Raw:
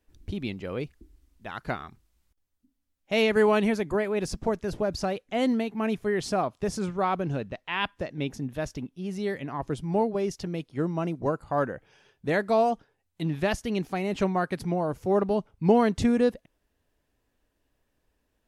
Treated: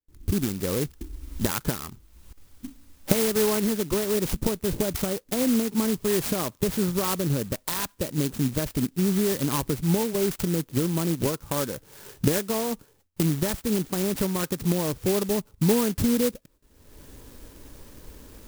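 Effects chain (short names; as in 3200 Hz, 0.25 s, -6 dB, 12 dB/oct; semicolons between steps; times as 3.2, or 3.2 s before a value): recorder AGC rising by 40 dB/s; gate with hold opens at -51 dBFS; bell 710 Hz -14 dB 0.26 oct; clock jitter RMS 0.14 ms; gain -1 dB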